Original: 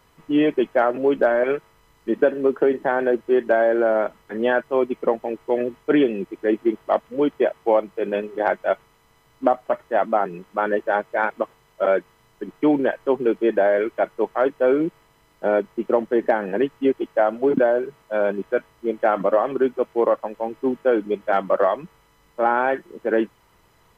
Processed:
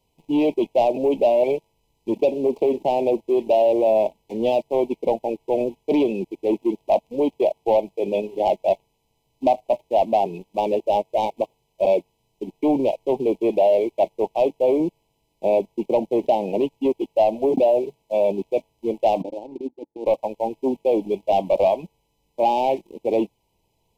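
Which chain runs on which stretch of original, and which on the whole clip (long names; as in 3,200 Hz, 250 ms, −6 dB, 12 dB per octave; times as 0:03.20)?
0:19.22–0:20.06: parametric band 530 Hz +8 dB 0.36 octaves + transient designer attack −11 dB, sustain −5 dB + formant resonators in series u
whole clip: leveller curve on the samples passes 2; dynamic equaliser 670 Hz, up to +5 dB, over −25 dBFS, Q 2.4; elliptic band-stop filter 910–2,400 Hz, stop band 70 dB; level −6 dB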